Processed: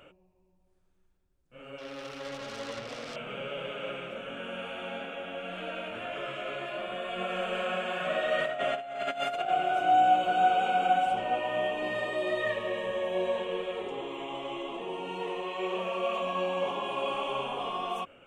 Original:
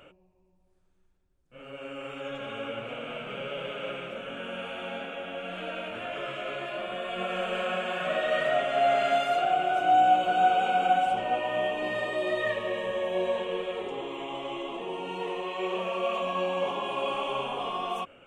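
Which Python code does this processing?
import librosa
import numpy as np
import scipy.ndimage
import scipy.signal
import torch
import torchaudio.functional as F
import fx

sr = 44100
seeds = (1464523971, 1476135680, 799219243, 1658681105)

y = fx.self_delay(x, sr, depth_ms=0.27, at=(1.78, 3.16))
y = fx.over_compress(y, sr, threshold_db=-28.0, ratio=-0.5, at=(8.36, 9.48), fade=0.02)
y = F.gain(torch.from_numpy(y), -1.5).numpy()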